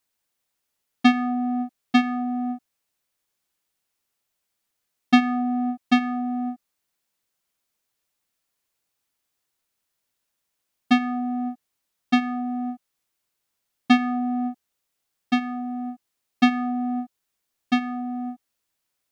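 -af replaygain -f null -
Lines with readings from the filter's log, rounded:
track_gain = +8.8 dB
track_peak = 0.390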